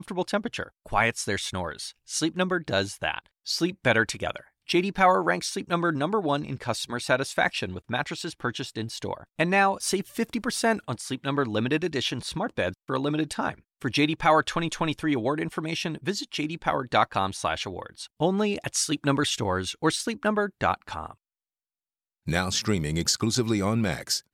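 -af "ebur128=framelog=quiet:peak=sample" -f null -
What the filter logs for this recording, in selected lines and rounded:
Integrated loudness:
  I:         -26.7 LUFS
  Threshold: -36.9 LUFS
Loudness range:
  LRA:         2.9 LU
  Threshold: -47.0 LUFS
  LRA low:   -28.4 LUFS
  LRA high:  -25.5 LUFS
Sample peak:
  Peak:       -8.2 dBFS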